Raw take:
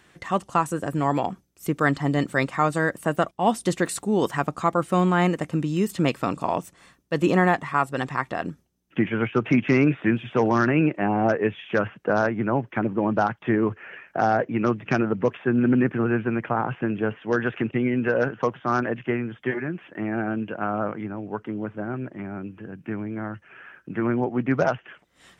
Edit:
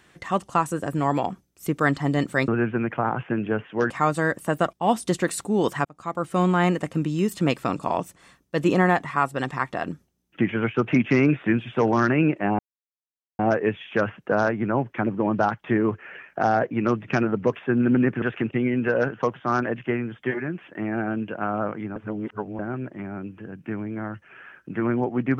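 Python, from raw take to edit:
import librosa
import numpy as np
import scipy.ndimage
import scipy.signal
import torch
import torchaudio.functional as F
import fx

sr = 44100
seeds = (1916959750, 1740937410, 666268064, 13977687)

y = fx.edit(x, sr, fx.fade_in_span(start_s=4.43, length_s=0.6),
    fx.insert_silence(at_s=11.17, length_s=0.8),
    fx.move(start_s=16.0, length_s=1.42, to_s=2.48),
    fx.reverse_span(start_s=21.16, length_s=0.63), tone=tone)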